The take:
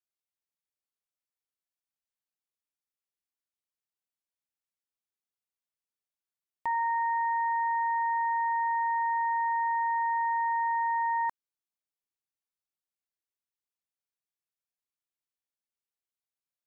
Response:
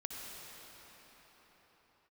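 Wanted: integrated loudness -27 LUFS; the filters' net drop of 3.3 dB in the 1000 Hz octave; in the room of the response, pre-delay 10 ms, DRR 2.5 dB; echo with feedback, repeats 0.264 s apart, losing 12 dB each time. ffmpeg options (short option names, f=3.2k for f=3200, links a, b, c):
-filter_complex "[0:a]equalizer=f=1k:t=o:g=-3.5,aecho=1:1:264|528|792:0.251|0.0628|0.0157,asplit=2[a][b];[1:a]atrim=start_sample=2205,adelay=10[c];[b][c]afir=irnorm=-1:irlink=0,volume=-2.5dB[d];[a][d]amix=inputs=2:normalize=0,volume=3dB"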